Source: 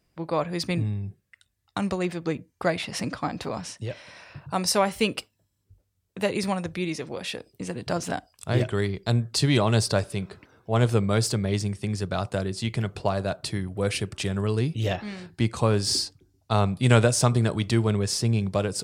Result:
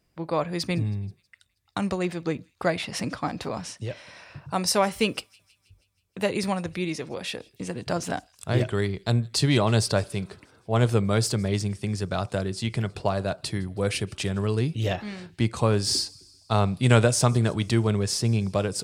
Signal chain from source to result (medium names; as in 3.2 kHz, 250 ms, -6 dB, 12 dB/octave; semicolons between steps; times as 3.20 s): feedback echo behind a high-pass 160 ms, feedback 59%, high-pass 2.8 kHz, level -24 dB